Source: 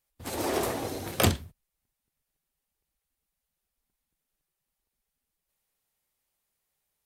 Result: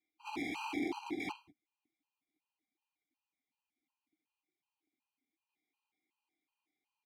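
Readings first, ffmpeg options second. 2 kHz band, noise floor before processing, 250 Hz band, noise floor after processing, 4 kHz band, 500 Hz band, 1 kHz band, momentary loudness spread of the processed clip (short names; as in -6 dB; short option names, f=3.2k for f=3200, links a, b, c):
-6.0 dB, -85 dBFS, -6.0 dB, under -85 dBFS, -14.0 dB, -15.5 dB, -9.0 dB, 7 LU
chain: -filter_complex "[0:a]acrossover=split=3400[a][b];[b]acompressor=threshold=-41dB:ratio=4:attack=1:release=60[c];[a][c]amix=inputs=2:normalize=0,highpass=130,equalizer=f=3.8k:w=0.86:g=6,aecho=1:1:2.9:0.41,acrossover=split=520[d][e];[e]alimiter=limit=-18.5dB:level=0:latency=1:release=236[f];[d][f]amix=inputs=2:normalize=0,aeval=exprs='(mod(23.7*val(0)+1,2)-1)/23.7':c=same,asplit=3[g][h][i];[g]bandpass=f=300:t=q:w=8,volume=0dB[j];[h]bandpass=f=870:t=q:w=8,volume=-6dB[k];[i]bandpass=f=2.24k:t=q:w=8,volume=-9dB[l];[j][k][l]amix=inputs=3:normalize=0,afftfilt=real='re*gt(sin(2*PI*2.7*pts/sr)*(1-2*mod(floor(b*sr/1024/800),2)),0)':imag='im*gt(sin(2*PI*2.7*pts/sr)*(1-2*mod(floor(b*sr/1024/800),2)),0)':win_size=1024:overlap=0.75,volume=12dB"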